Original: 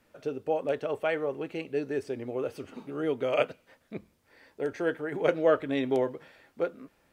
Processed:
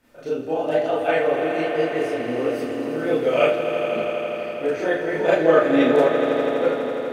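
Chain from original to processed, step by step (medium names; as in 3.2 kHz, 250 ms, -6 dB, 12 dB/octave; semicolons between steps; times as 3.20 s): pitch shift switched off and on +1.5 st, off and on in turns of 535 ms; echo with a slow build-up 82 ms, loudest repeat 5, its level -11 dB; Schroeder reverb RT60 0.32 s, combs from 25 ms, DRR -7.5 dB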